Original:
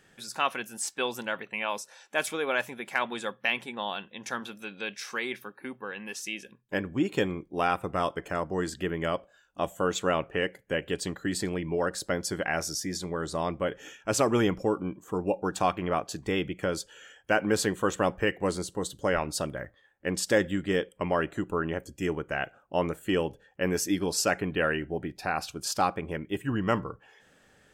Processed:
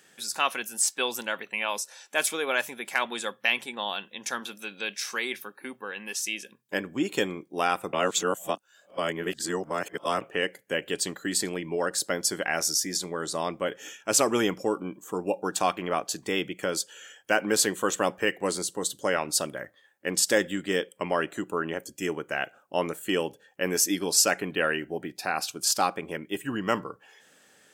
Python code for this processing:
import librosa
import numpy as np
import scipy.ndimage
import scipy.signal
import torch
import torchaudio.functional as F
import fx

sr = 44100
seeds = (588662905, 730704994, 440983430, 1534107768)

y = fx.edit(x, sr, fx.reverse_span(start_s=7.93, length_s=2.28), tone=tone)
y = scipy.signal.sosfilt(scipy.signal.butter(2, 200.0, 'highpass', fs=sr, output='sos'), y)
y = fx.high_shelf(y, sr, hz=3700.0, db=10.5)